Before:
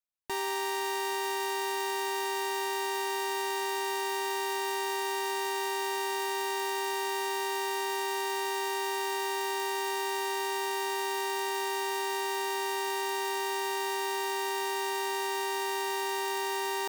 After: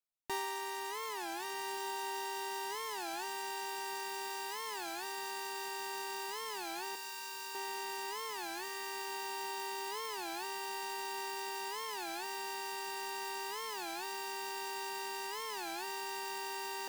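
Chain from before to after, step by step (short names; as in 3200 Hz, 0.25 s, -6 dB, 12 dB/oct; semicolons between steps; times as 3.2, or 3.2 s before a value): reverb removal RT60 1.2 s; 6.95–7.55 passive tone stack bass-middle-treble 10-0-10; diffused feedback echo 1.413 s, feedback 68%, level -8 dB; shoebox room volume 3600 m³, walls mixed, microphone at 0.45 m; record warp 33 1/3 rpm, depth 250 cents; gain -3.5 dB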